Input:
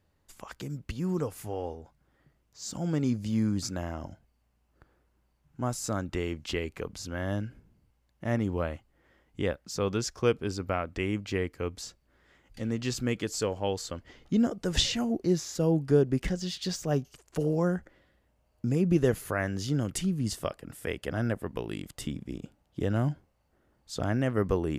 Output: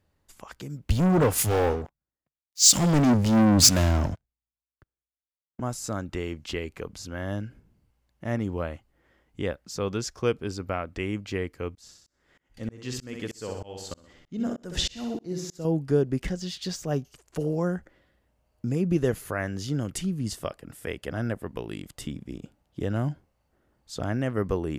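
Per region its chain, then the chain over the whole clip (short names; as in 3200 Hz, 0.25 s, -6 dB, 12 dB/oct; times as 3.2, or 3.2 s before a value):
0.89–5.6 sample leveller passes 5 + three-band expander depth 100%
11.75–15.65 flutter echo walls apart 10.8 m, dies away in 0.55 s + tremolo saw up 3.2 Hz, depth 100%
whole clip: dry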